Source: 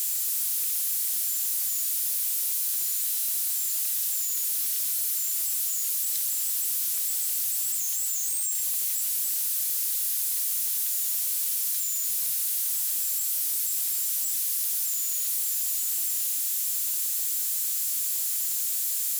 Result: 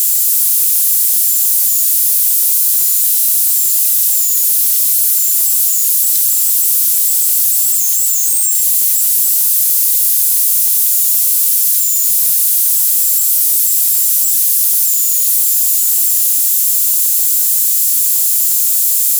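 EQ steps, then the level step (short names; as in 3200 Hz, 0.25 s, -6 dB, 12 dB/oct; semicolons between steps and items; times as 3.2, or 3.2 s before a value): HPF 75 Hz 6 dB/oct; high shelf 4200 Hz +10.5 dB; +6.0 dB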